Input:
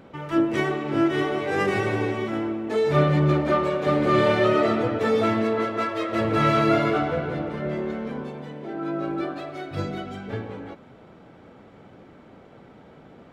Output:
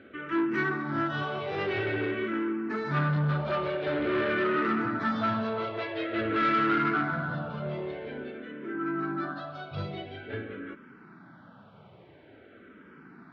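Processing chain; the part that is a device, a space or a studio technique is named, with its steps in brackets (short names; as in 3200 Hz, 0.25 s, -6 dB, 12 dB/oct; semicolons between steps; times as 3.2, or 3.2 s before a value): barber-pole phaser into a guitar amplifier (endless phaser -0.48 Hz; soft clip -22.5 dBFS, distortion -11 dB; speaker cabinet 100–4300 Hz, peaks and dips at 500 Hz -6 dB, 780 Hz -5 dB, 1500 Hz +8 dB); 4.09–4.62 high shelf 5200 Hz -9.5 dB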